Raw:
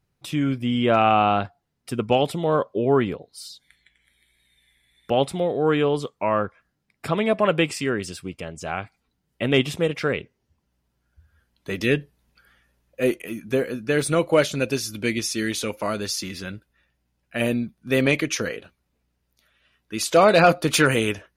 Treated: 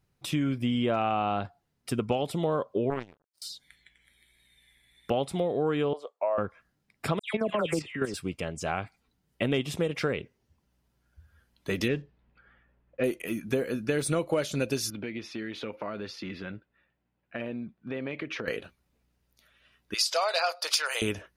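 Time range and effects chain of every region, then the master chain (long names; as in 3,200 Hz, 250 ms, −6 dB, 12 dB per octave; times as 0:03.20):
0:02.90–0:03.42: upward compression, threshold −24 dBFS + power curve on the samples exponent 3
0:05.93–0:06.38: four-pole ladder high-pass 540 Hz, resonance 60% + spectral tilt −2.5 dB per octave
0:07.19–0:08.14: all-pass dispersion lows, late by 148 ms, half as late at 2,400 Hz + output level in coarse steps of 11 dB
0:11.88–0:13.04: one scale factor per block 5 bits + low-pass that shuts in the quiet parts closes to 2,200 Hz, open at −16.5 dBFS + high-frequency loss of the air 180 metres
0:14.90–0:18.48: high-frequency loss of the air 360 metres + downward compressor, threshold −30 dBFS + high-pass filter 180 Hz 6 dB per octave
0:19.94–0:21.02: inverse Chebyshev high-pass filter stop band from 250 Hz, stop band 50 dB + parametric band 5,000 Hz +14.5 dB 0.42 octaves
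whole clip: dynamic equaliser 2,000 Hz, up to −3 dB, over −32 dBFS, Q 0.88; downward compressor 6 to 1, threshold −24 dBFS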